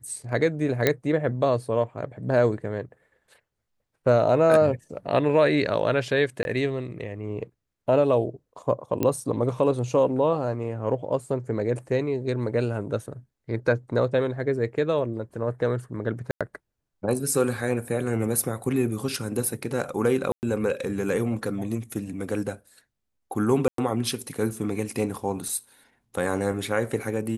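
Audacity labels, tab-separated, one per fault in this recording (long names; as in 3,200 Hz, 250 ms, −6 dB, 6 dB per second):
0.870000	0.870000	click −5 dBFS
6.430000	6.450000	drop-out 21 ms
9.030000	9.030000	click −11 dBFS
16.310000	16.410000	drop-out 96 ms
20.320000	20.430000	drop-out 109 ms
23.680000	23.780000	drop-out 103 ms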